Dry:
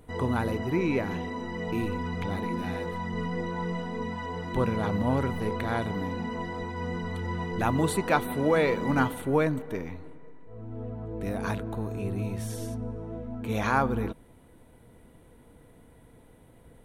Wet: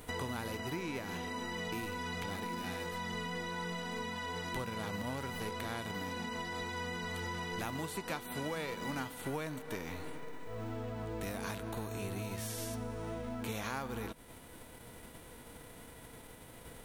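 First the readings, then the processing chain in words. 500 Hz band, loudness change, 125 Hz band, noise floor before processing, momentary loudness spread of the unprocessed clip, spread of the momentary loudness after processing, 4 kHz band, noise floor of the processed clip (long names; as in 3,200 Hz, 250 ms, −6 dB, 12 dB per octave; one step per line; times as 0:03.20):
−11.5 dB, −10.0 dB, −11.5 dB, −55 dBFS, 11 LU, 13 LU, +0.5 dB, −53 dBFS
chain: spectral envelope flattened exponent 0.6
downward compressor 6 to 1, threshold −39 dBFS, peak gain reduction 19.5 dB
level +2 dB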